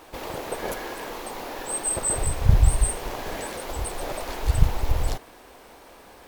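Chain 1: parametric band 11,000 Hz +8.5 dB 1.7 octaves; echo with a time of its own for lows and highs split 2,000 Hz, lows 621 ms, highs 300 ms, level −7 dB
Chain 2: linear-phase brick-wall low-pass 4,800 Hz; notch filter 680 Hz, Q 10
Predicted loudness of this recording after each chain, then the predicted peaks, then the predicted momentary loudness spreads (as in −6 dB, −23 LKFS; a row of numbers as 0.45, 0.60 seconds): −22.5, −28.5 LKFS; −1.5, −2.0 dBFS; 16, 13 LU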